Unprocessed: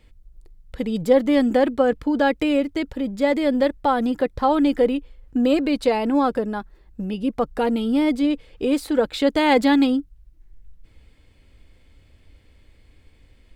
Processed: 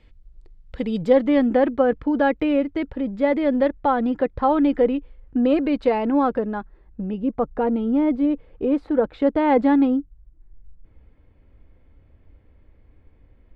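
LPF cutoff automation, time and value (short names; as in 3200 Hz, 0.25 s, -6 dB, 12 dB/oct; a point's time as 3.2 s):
0.98 s 4200 Hz
1.45 s 2200 Hz
6.5 s 2200 Hz
7.38 s 1300 Hz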